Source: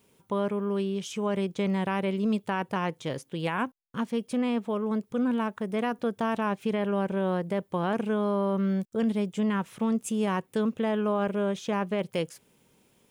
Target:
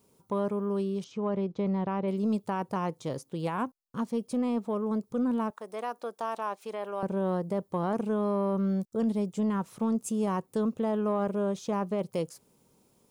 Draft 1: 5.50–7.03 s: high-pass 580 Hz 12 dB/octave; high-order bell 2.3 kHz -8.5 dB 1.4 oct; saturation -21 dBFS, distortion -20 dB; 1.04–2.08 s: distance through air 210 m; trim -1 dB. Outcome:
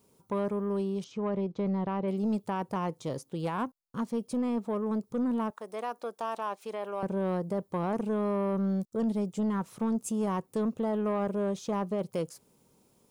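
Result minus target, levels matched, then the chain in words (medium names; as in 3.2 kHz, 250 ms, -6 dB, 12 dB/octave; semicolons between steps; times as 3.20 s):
saturation: distortion +11 dB
5.50–7.03 s: high-pass 580 Hz 12 dB/octave; high-order bell 2.3 kHz -8.5 dB 1.4 oct; saturation -14.5 dBFS, distortion -31 dB; 1.04–2.08 s: distance through air 210 m; trim -1 dB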